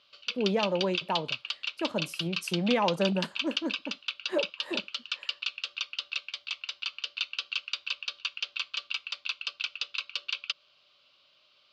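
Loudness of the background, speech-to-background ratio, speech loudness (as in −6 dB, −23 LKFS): −34.0 LKFS, 2.5 dB, −31.5 LKFS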